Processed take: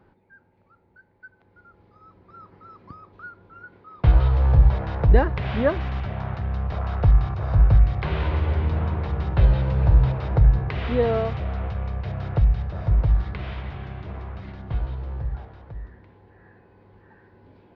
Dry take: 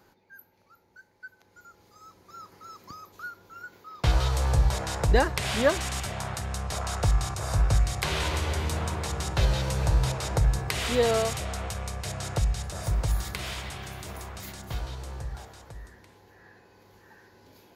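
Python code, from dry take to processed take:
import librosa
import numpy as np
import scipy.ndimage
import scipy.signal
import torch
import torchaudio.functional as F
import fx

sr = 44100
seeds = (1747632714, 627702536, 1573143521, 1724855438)

y = scipy.ndimage.gaussian_filter1d(x, 3.0, mode='constant')
y = fx.low_shelf(y, sr, hz=290.0, db=8.0)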